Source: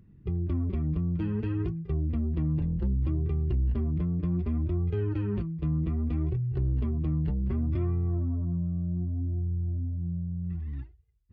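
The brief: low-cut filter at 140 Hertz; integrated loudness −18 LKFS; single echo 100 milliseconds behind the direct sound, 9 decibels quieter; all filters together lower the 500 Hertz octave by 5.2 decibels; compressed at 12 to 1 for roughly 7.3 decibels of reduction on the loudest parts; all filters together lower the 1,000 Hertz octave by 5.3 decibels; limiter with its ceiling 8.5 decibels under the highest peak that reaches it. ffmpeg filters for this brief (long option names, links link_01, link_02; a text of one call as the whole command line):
ffmpeg -i in.wav -af "highpass=140,equalizer=frequency=500:width_type=o:gain=-7.5,equalizer=frequency=1000:width_type=o:gain=-4.5,acompressor=threshold=-36dB:ratio=12,alimiter=level_in=13dB:limit=-24dB:level=0:latency=1,volume=-13dB,aecho=1:1:100:0.355,volume=26dB" out.wav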